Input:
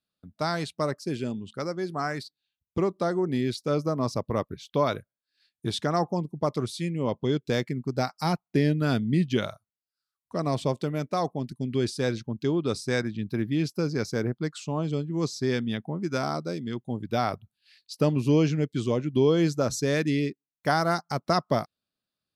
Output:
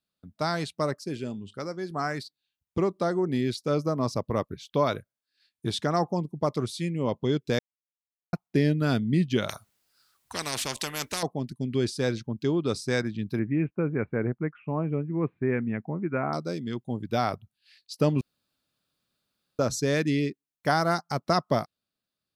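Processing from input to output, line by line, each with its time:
1.04–1.91 s: feedback comb 100 Hz, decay 0.18 s, mix 40%
7.59–8.33 s: mute
9.49–11.23 s: spectrum-flattening compressor 4:1
13.39–16.33 s: steep low-pass 2.5 kHz 72 dB/octave
18.21–19.59 s: room tone

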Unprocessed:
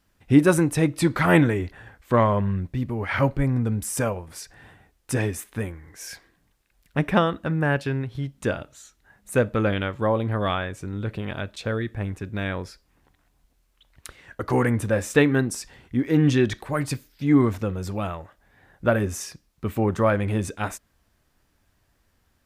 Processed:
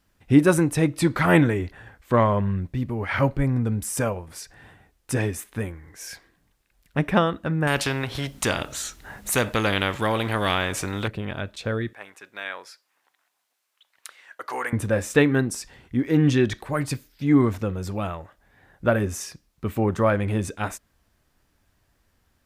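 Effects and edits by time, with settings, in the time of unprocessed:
7.67–11.08 s: spectrum-flattening compressor 2:1
11.93–14.73 s: high-pass 820 Hz

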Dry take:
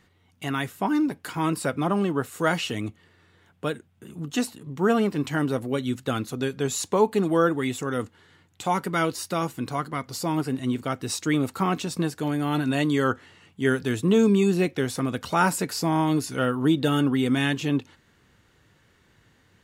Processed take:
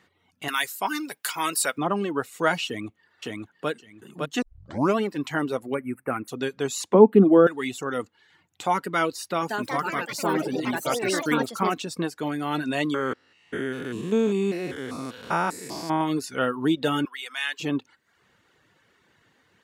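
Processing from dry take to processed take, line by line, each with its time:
0.48–1.78 s: tilt EQ +4.5 dB/octave
2.66–3.69 s: echo throw 560 ms, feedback 25%, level -2 dB
4.42 s: tape start 0.56 s
5.74–6.28 s: Chebyshev band-stop 2.4–8.6 kHz, order 4
6.94–7.47 s: FFT filter 120 Hz 0 dB, 200 Hz +14 dB, 390 Hz +8 dB, 1 kHz -1 dB, 1.9 kHz -6 dB, 3.2 kHz -6 dB, 5.2 kHz -23 dB, 13 kHz -4 dB
9.27–12.14 s: ever faster or slower copies 195 ms, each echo +4 st, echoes 3
12.94–16.01 s: spectrogram pixelated in time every 200 ms
17.05–17.60 s: high-pass 1.4 kHz
whole clip: high-pass 350 Hz 6 dB/octave; reverb removal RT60 0.62 s; treble shelf 4.9 kHz -6.5 dB; trim +2.5 dB

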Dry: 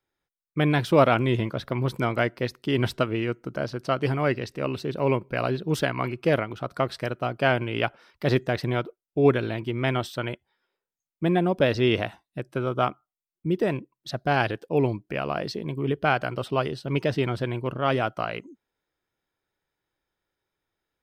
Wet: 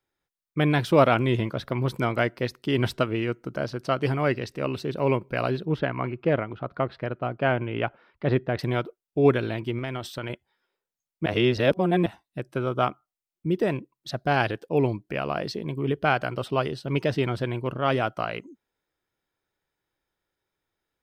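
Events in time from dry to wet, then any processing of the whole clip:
5.65–8.59 s: distance through air 370 m
9.78–10.30 s: compression, threshold -27 dBFS
11.26–12.06 s: reverse

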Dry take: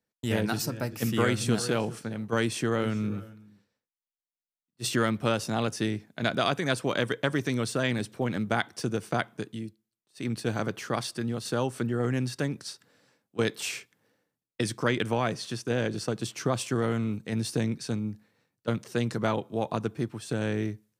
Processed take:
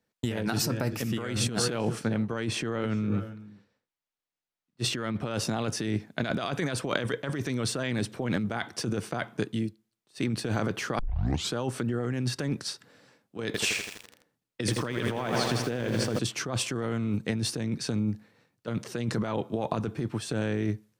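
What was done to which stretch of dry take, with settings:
2.08–5.31 s: treble shelf 6.8 kHz -9 dB
10.99 s: tape start 0.55 s
13.46–16.19 s: bit-crushed delay 82 ms, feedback 80%, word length 7-bit, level -8 dB
whole clip: treble shelf 7.5 kHz -7 dB; compressor with a negative ratio -32 dBFS, ratio -1; trim +3 dB

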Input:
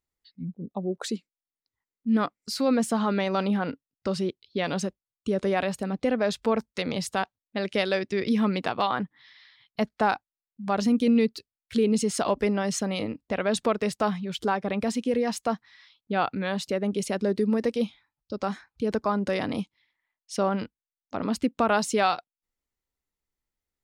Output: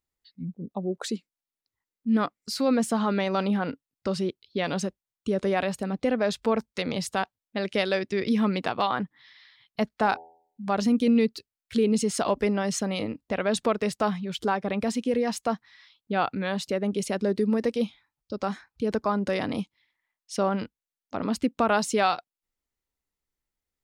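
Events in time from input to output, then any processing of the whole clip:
9.91–10.69 s: de-hum 82.48 Hz, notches 11

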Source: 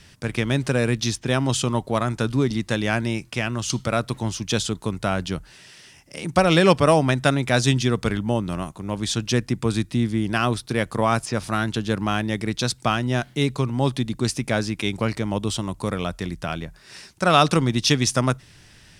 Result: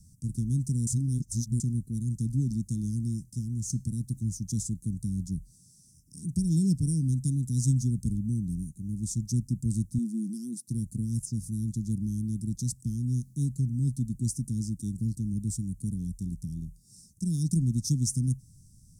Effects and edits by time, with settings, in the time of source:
0.87–1.60 s: reverse
9.98–10.68 s: brick-wall FIR high-pass 160 Hz
whole clip: inverse Chebyshev band-stop 610–2800 Hz, stop band 60 dB; peaking EQ 5.8 kHz +3 dB 0.29 oct; trim -2.5 dB

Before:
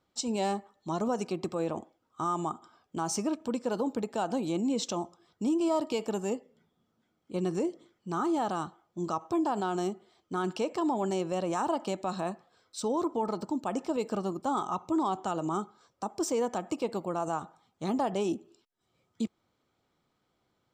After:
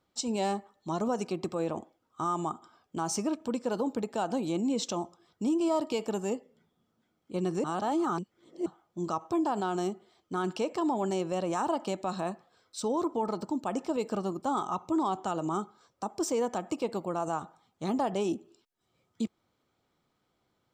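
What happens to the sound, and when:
7.64–8.66 s: reverse

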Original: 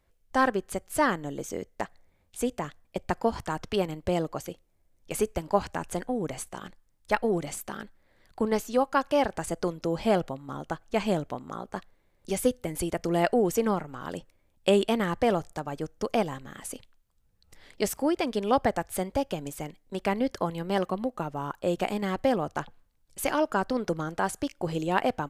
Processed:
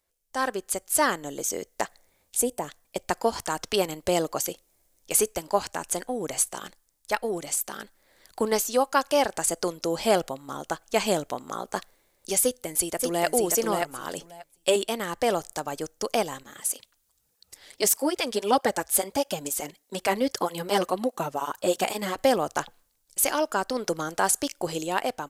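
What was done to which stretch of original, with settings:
2.41–2.68 s: time-frequency box 1–7.9 kHz -8 dB
12.41–13.26 s: echo throw 580 ms, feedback 15%, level -4 dB
14.17–14.76 s: comb 7.1 ms, depth 80%
16.43–22.18 s: cancelling through-zero flanger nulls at 1.6 Hz, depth 7.8 ms
whole clip: tone controls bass -10 dB, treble +12 dB; level rider gain up to 15 dB; trim -7 dB

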